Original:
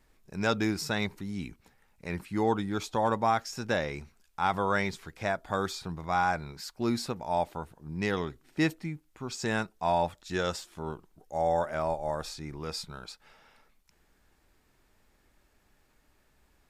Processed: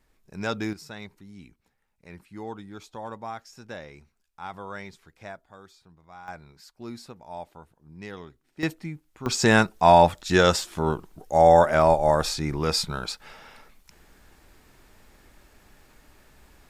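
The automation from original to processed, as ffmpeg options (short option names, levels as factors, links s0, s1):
-af "asetnsamples=n=441:p=0,asendcmd='0.73 volume volume -10dB;5.44 volume volume -18.5dB;6.28 volume volume -9.5dB;8.63 volume volume 1dB;9.26 volume volume 12dB',volume=0.841"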